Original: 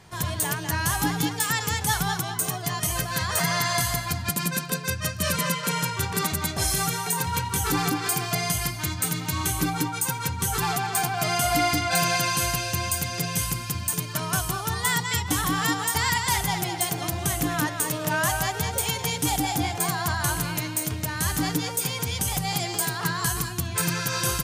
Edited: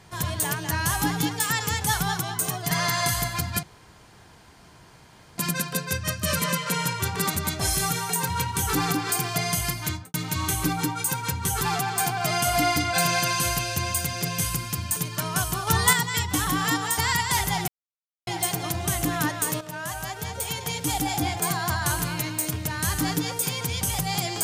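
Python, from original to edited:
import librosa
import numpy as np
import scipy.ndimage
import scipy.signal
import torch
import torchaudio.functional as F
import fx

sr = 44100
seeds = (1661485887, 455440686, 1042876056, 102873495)

y = fx.studio_fade_out(x, sr, start_s=8.85, length_s=0.26)
y = fx.edit(y, sr, fx.cut(start_s=2.71, length_s=0.72),
    fx.insert_room_tone(at_s=4.35, length_s=1.75),
    fx.clip_gain(start_s=14.64, length_s=0.26, db=6.0),
    fx.insert_silence(at_s=16.65, length_s=0.59),
    fx.fade_in_from(start_s=17.99, length_s=1.7, floor_db=-12.0), tone=tone)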